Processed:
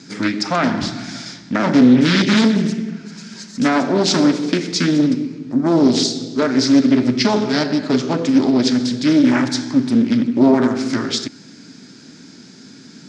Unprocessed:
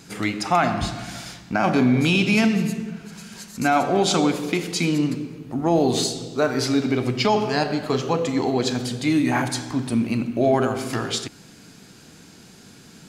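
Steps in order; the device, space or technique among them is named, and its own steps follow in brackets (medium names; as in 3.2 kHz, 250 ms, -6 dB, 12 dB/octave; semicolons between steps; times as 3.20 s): full-range speaker at full volume (loudspeaker Doppler distortion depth 0.76 ms; cabinet simulation 150–6800 Hz, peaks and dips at 260 Hz +8 dB, 490 Hz -5 dB, 750 Hz -8 dB, 1.1 kHz -6 dB, 2.8 kHz -7 dB, 5.2 kHz +5 dB); trim +5 dB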